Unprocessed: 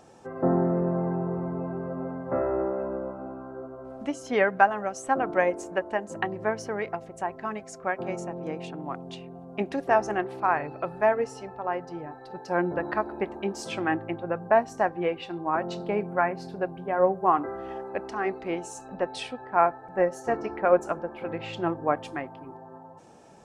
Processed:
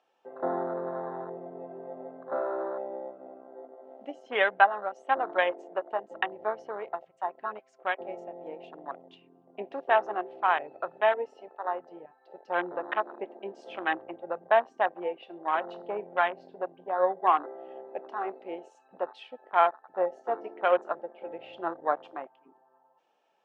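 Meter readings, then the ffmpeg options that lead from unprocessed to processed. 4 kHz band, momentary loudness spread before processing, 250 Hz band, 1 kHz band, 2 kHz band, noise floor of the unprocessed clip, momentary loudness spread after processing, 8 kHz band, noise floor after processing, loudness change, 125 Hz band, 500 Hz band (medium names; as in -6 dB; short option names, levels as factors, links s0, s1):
-0.5 dB, 13 LU, -12.0 dB, -1.0 dB, -0.5 dB, -46 dBFS, 17 LU, under -25 dB, -66 dBFS, -2.0 dB, under -20 dB, -3.5 dB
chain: -af "afwtdn=0.0282,highpass=580,lowpass=3800,equalizer=f=3000:w=2.3:g=9"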